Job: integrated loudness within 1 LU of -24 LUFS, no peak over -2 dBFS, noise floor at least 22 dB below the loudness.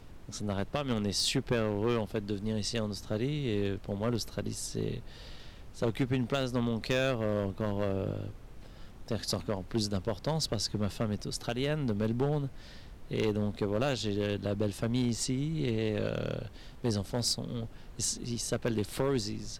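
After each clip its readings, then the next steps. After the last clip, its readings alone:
clipped samples 1.0%; clipping level -21.5 dBFS; noise floor -49 dBFS; noise floor target -55 dBFS; loudness -32.5 LUFS; peak level -21.5 dBFS; loudness target -24.0 LUFS
-> clip repair -21.5 dBFS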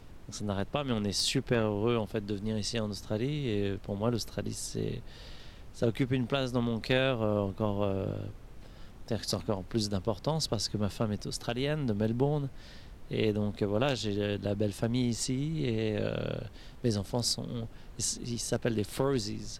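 clipped samples 0.0%; noise floor -49 dBFS; noise floor target -54 dBFS
-> noise print and reduce 6 dB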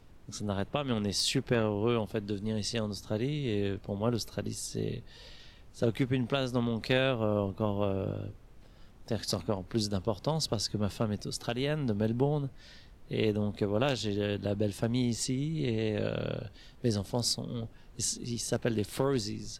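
noise floor -54 dBFS; loudness -32.0 LUFS; peak level -12.5 dBFS; loudness target -24.0 LUFS
-> trim +8 dB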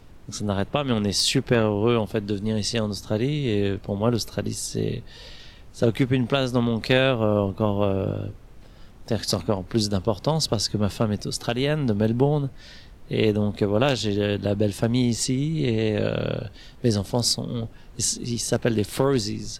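loudness -24.0 LUFS; peak level -4.5 dBFS; noise floor -46 dBFS

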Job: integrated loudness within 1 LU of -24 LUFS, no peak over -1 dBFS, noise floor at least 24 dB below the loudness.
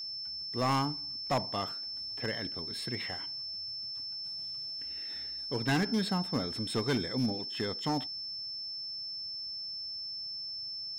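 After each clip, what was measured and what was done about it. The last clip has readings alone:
clipped samples 0.7%; clipping level -24.0 dBFS; steady tone 5.3 kHz; tone level -37 dBFS; loudness -34.0 LUFS; peak level -24.0 dBFS; loudness target -24.0 LUFS
-> clip repair -24 dBFS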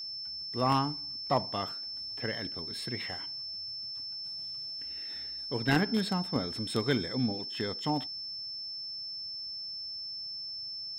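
clipped samples 0.0%; steady tone 5.3 kHz; tone level -37 dBFS
-> band-stop 5.3 kHz, Q 30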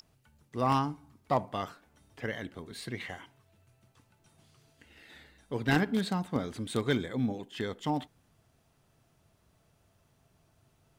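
steady tone not found; loudness -33.0 LUFS; peak level -14.5 dBFS; loudness target -24.0 LUFS
-> trim +9 dB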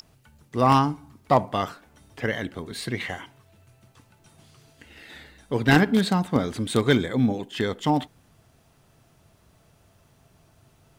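loudness -24.0 LUFS; peak level -5.5 dBFS; noise floor -61 dBFS

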